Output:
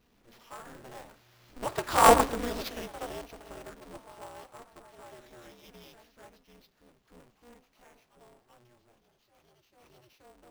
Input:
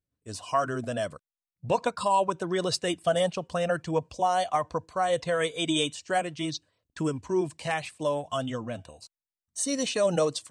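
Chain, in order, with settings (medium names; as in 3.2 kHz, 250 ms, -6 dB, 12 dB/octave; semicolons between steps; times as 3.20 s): jump at every zero crossing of -38 dBFS; Doppler pass-by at 2.12 s, 15 m/s, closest 1.1 m; sample-rate reducer 8.5 kHz, jitter 0%; on a send at -13.5 dB: reverberation RT60 0.45 s, pre-delay 3 ms; on the sum: ever faster or slower copies 95 ms, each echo +1 st, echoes 3, each echo -6 dB; polarity switched at an audio rate 120 Hz; trim +6 dB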